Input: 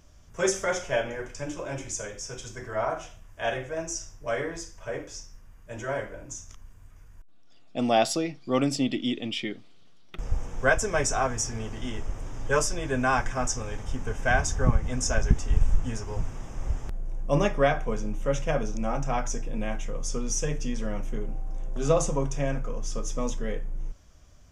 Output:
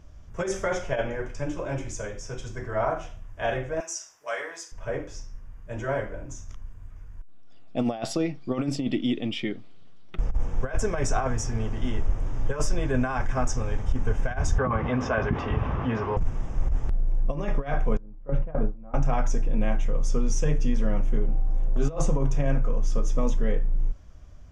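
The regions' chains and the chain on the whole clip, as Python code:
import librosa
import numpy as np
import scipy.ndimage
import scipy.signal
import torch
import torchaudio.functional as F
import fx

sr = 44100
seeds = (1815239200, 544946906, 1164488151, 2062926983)

y = fx.chain(x, sr, fx.highpass(hz=790.0, slope=12),
    fx.high_shelf(hz=5100.0, db=9.0), at=(3.8, 4.72))
y = fx.chain(y, sr, fx.cabinet(low_hz=170.0, low_slope=12, high_hz=3500.0, hz=(170.0, 290.0, 1100.0), db=(-5, -3, 7)),
    fx.env_flatten(amount_pct=50), at=(14.58, 16.17))
y = fx.chain(y, sr, fx.lowpass(hz=1300.0, slope=12),
    fx.gate_hold(open_db=-15.0, close_db=-25.0, hold_ms=71.0, range_db=-21, attack_ms=1.4, release_ms=100.0), at=(17.97, 18.94))
y = fx.high_shelf(y, sr, hz=3800.0, db=-11.5)
y = fx.over_compress(y, sr, threshold_db=-26.0, ratio=-0.5)
y = fx.low_shelf(y, sr, hz=120.0, db=6.5)
y = y * librosa.db_to_amplitude(1.5)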